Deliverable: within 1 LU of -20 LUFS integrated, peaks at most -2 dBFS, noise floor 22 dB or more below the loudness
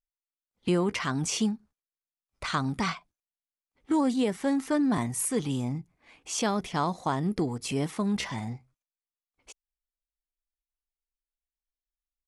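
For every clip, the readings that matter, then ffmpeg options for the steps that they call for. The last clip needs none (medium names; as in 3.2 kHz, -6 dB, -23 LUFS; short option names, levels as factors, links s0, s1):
loudness -29.0 LUFS; peak level -16.0 dBFS; loudness target -20.0 LUFS
-> -af "volume=2.82"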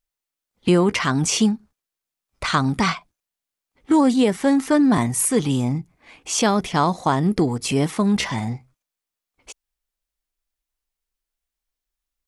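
loudness -20.0 LUFS; peak level -7.0 dBFS; noise floor -87 dBFS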